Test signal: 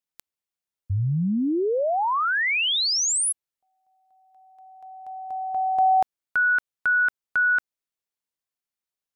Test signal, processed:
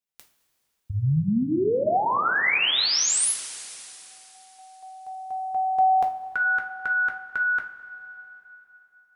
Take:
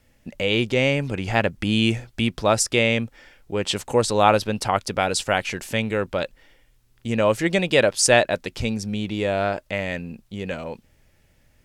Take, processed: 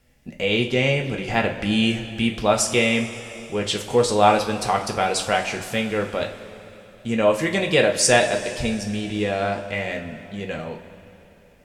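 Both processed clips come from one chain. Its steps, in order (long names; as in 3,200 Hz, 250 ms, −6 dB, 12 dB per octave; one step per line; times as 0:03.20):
coupled-rooms reverb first 0.3 s, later 3.4 s, from −17 dB, DRR 1 dB
level −2 dB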